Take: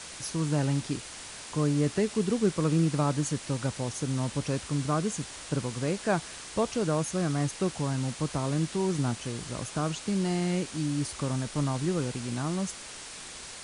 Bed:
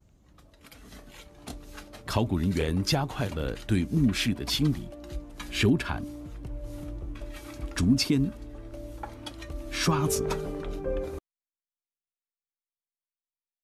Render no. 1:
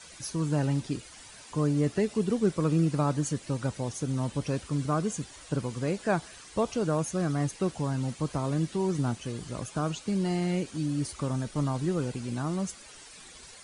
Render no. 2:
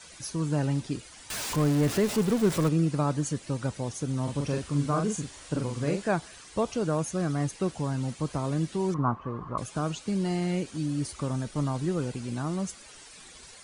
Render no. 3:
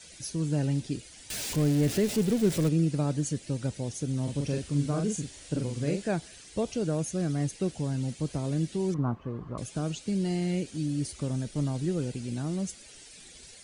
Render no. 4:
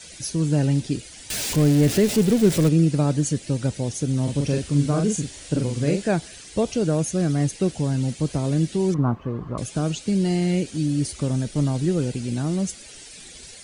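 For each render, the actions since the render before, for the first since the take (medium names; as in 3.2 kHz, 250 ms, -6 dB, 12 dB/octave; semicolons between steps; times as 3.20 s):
noise reduction 11 dB, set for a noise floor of -43 dBFS
1.30–2.69 s: jump at every zero crossing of -29 dBFS; 4.23–6.09 s: doubling 42 ms -4 dB; 8.94–9.58 s: resonant low-pass 1.1 kHz, resonance Q 11
peaking EQ 1.1 kHz -12.5 dB 1 oct
trim +7.5 dB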